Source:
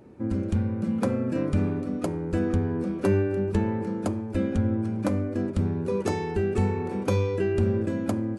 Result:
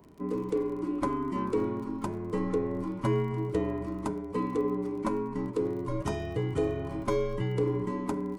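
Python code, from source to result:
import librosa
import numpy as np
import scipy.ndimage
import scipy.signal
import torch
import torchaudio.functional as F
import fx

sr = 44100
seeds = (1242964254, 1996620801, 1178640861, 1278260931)

y = fx.band_invert(x, sr, width_hz=500)
y = fx.small_body(y, sr, hz=(560.0, 1100.0), ring_ms=45, db=11)
y = fx.dmg_crackle(y, sr, seeds[0], per_s=29.0, level_db=-38.0)
y = y * librosa.db_to_amplitude(-5.5)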